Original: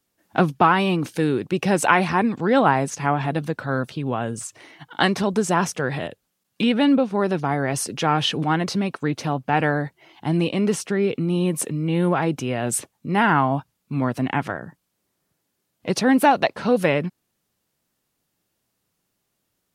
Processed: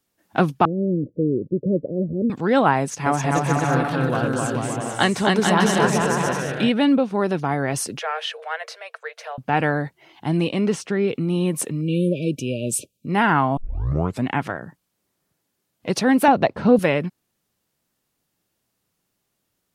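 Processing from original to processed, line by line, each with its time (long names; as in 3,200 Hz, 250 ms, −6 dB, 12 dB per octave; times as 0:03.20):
0:00.65–0:02.30: Butterworth low-pass 580 Hz 96 dB per octave
0:02.80–0:06.70: bouncing-ball delay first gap 260 ms, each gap 0.7×, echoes 7, each echo −2 dB
0:07.99–0:09.38: Chebyshev high-pass with heavy ripple 450 Hz, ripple 9 dB
0:10.67–0:11.08: parametric band 12,000 Hz −11 dB 0.89 octaves
0:11.81–0:13.07: linear-phase brick-wall band-stop 630–2,300 Hz
0:13.57: tape start 0.68 s
0:16.28–0:16.79: spectral tilt −3 dB per octave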